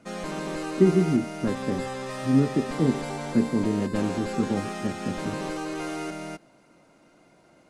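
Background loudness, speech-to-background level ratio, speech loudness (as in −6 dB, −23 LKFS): −33.0 LKFS, 6.5 dB, −26.5 LKFS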